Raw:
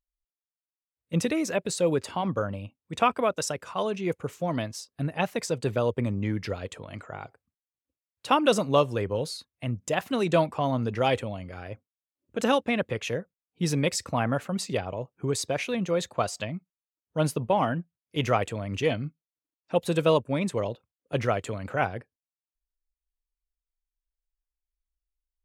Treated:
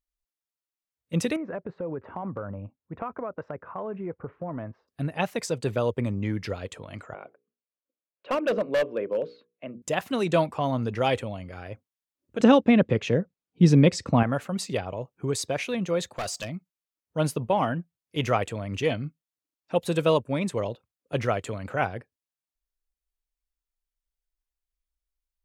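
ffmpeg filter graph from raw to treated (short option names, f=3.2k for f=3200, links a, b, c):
-filter_complex "[0:a]asettb=1/sr,asplit=3[a][b][c];[a]atrim=end=1.364[d];[b]atrim=start=1.36:end=4.88,asetpts=PTS-STARTPTS,afade=t=in:d=0.004:c=qsin,afade=t=out:st=3.516:d=0.004:c=qsin,lowpass=f=1.6k:w=0.5412,lowpass=f=1.6k:w=1.3066,acompressor=threshold=-30dB:ratio=4:attack=3.2:release=140:knee=1:detection=peak[e];[c]atrim=start=4.876[f];[d][e]acrossfade=d=0.004:c1=hsin:c2=qsin[g];[g][f]acrossfade=d=0.004:c1=qsin:c2=hsin,asettb=1/sr,asplit=3[h][i][j];[h]atrim=end=7.144[k];[i]atrim=start=7.14:end=9.82,asetpts=PTS-STARTPTS,afade=t=in:d=0.004:c=qsin,afade=t=out:st=2.676:d=0.004:c=qsin,highpass=f=210:w=0.5412,highpass=f=210:w=1.3066,equalizer=f=270:t=q:w=4:g=-4,equalizer=f=580:t=q:w=4:g=7,equalizer=f=840:t=q:w=4:g=-10,equalizer=f=1.3k:t=q:w=4:g=-4,equalizer=f=1.9k:t=q:w=4:g=-7,lowpass=f=2.4k:w=0.5412,lowpass=f=2.4k:w=1.3066,bandreject=f=60:t=h:w=6,bandreject=f=120:t=h:w=6,bandreject=f=180:t=h:w=6,bandreject=f=240:t=h:w=6,bandreject=f=300:t=h:w=6,bandreject=f=360:t=h:w=6,bandreject=f=420:t=h:w=6,bandreject=f=480:t=h:w=6,asoftclip=type=hard:threshold=-20dB[l];[j]atrim=start=9.816[m];[k][l]acrossfade=d=0.004:c1=hsin:c2=qsin[n];[n][m]acrossfade=d=0.004:c1=qsin:c2=hsin,asettb=1/sr,asplit=3[o][p][q];[o]atrim=end=12.404[r];[p]atrim=start=12.4:end=14.23,asetpts=PTS-STARTPTS,afade=t=in:d=0.004:c=qsin,afade=t=out:st=1.826:d=0.004:c=qsin,lowpass=6k,equalizer=f=200:w=0.48:g=11[s];[q]atrim=start=14.226[t];[r][s]acrossfade=d=0.004:c1=hsin:c2=qsin[u];[u][t]acrossfade=d=0.004:c1=qsin:c2=hsin,asettb=1/sr,asplit=3[v][w][x];[v]atrim=end=16.164[y];[w]atrim=start=16.16:end=16.56,asetpts=PTS-STARTPTS,afade=t=in:d=0.004:c=qsin,afade=t=out:st=0.396:d=0.004:c=qsin,acrossover=split=4500[z][aa];[aa]acompressor=threshold=-45dB:ratio=4:attack=1:release=60[ab];[z][ab]amix=inputs=2:normalize=0,bass=f=250:g=-1,treble=f=4k:g=12,asoftclip=type=hard:threshold=-27dB[ac];[x]atrim=start=16.556[ad];[y][ac]acrossfade=d=0.004:c1=hsin:c2=qsin[ae];[ae][ad]acrossfade=d=0.004:c1=qsin:c2=hsin"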